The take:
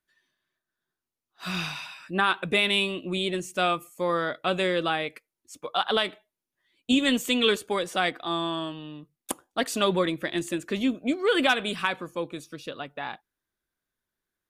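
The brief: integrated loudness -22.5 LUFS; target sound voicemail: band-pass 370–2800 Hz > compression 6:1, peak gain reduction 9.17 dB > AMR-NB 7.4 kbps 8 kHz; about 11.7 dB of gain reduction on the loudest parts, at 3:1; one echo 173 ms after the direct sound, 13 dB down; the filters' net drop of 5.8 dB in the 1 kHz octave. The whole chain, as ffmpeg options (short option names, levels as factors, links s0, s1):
-af "equalizer=f=1000:t=o:g=-8,acompressor=threshold=0.0178:ratio=3,highpass=370,lowpass=2800,aecho=1:1:173:0.224,acompressor=threshold=0.00891:ratio=6,volume=16.8" -ar 8000 -c:a libopencore_amrnb -b:a 7400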